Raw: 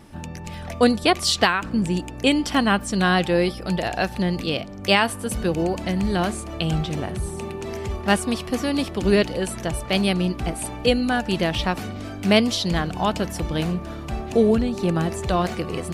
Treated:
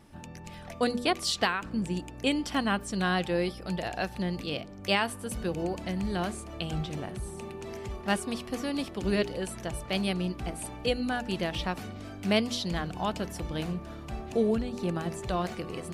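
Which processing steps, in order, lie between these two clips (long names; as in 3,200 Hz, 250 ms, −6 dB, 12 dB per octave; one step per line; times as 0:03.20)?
hum removal 80.88 Hz, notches 6
level −8.5 dB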